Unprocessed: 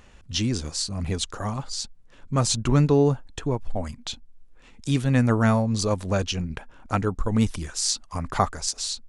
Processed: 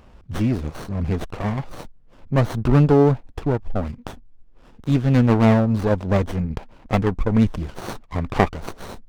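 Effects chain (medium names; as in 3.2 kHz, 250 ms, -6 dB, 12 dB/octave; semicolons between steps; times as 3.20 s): Gaussian low-pass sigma 1.7 samples; sliding maximum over 17 samples; trim +5 dB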